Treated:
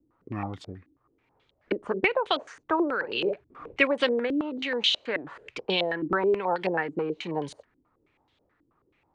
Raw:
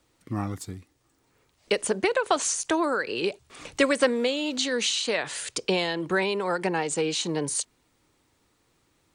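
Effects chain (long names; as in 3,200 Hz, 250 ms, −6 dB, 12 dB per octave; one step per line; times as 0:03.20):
0:02.97–0:03.76: double-tracking delay 47 ms −7 dB
low-pass on a step sequencer 9.3 Hz 300–3,400 Hz
level −4.5 dB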